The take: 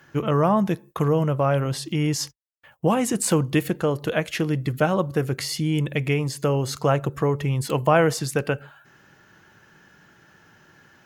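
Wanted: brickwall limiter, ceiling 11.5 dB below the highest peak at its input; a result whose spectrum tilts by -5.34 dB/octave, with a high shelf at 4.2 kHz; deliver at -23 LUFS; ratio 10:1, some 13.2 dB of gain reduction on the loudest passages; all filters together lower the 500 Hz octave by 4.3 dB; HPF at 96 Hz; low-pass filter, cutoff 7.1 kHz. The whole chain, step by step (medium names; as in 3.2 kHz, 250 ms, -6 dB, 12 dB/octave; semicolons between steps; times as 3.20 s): high-pass 96 Hz; low-pass 7.1 kHz; peaking EQ 500 Hz -5 dB; treble shelf 4.2 kHz -6.5 dB; compression 10:1, threshold -30 dBFS; trim +16 dB; peak limiter -13 dBFS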